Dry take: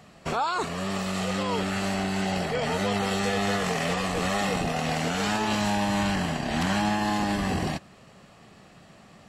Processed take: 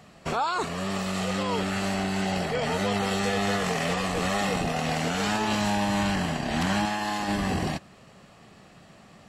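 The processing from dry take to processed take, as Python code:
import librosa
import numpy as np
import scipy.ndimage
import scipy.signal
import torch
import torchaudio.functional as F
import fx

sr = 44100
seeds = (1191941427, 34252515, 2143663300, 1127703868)

y = fx.low_shelf(x, sr, hz=410.0, db=-9.0, at=(6.85, 7.28))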